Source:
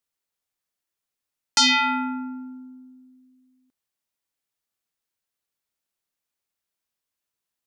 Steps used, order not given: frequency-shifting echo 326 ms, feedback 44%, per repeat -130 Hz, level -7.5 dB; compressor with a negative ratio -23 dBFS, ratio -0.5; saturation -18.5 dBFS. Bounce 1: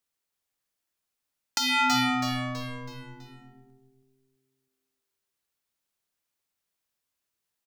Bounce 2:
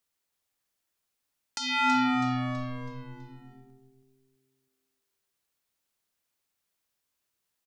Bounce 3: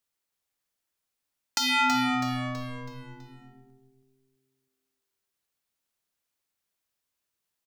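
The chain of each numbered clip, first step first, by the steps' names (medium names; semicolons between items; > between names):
saturation > frequency-shifting echo > compressor with a negative ratio; compressor with a negative ratio > saturation > frequency-shifting echo; saturation > compressor with a negative ratio > frequency-shifting echo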